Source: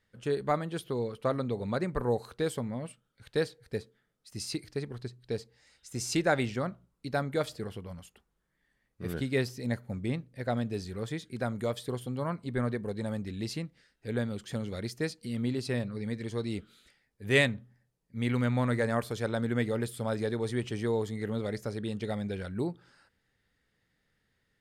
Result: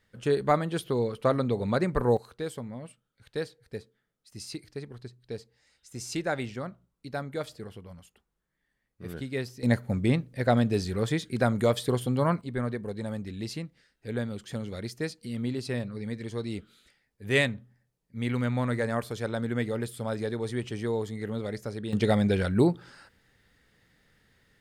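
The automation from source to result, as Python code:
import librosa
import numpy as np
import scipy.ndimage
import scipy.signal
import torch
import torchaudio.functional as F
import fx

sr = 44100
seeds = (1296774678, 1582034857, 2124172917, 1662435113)

y = fx.gain(x, sr, db=fx.steps((0.0, 5.0), (2.17, -3.5), (9.63, 8.0), (12.41, 0.0), (21.93, 10.5)))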